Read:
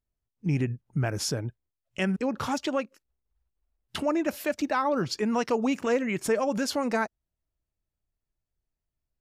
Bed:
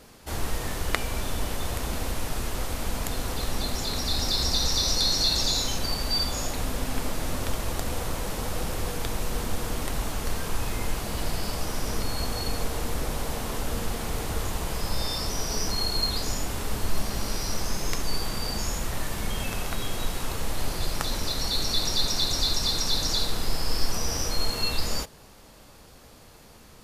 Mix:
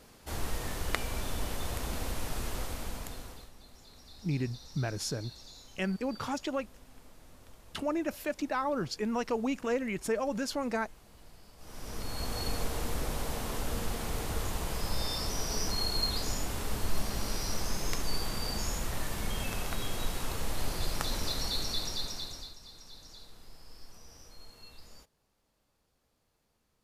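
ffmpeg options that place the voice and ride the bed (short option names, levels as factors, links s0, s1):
-filter_complex "[0:a]adelay=3800,volume=0.531[s0];[1:a]volume=6.31,afade=t=out:st=2.54:d=0.97:silence=0.0944061,afade=t=in:st=11.57:d=0.87:silence=0.0841395,afade=t=out:st=21.29:d=1.26:silence=0.0891251[s1];[s0][s1]amix=inputs=2:normalize=0"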